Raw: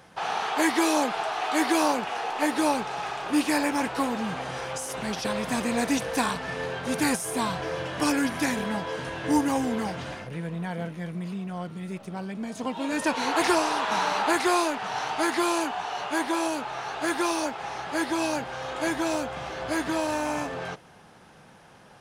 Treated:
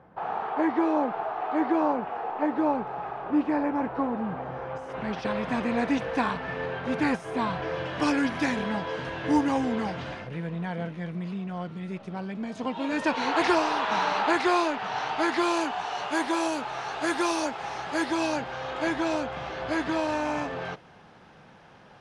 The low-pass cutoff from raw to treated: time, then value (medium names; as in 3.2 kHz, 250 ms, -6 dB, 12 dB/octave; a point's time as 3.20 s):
4.61 s 1.1 kHz
5.24 s 2.6 kHz
7.46 s 2.6 kHz
7.97 s 4.3 kHz
15.20 s 4.3 kHz
15.95 s 8 kHz
17.90 s 8 kHz
18.62 s 4.4 kHz